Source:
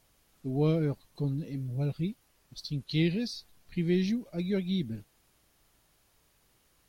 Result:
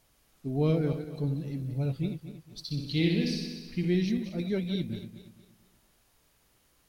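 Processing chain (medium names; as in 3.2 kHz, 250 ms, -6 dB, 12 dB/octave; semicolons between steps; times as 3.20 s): backward echo that repeats 116 ms, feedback 58%, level -9 dB; 2.62–3.85 s: flutter echo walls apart 10.5 m, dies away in 0.79 s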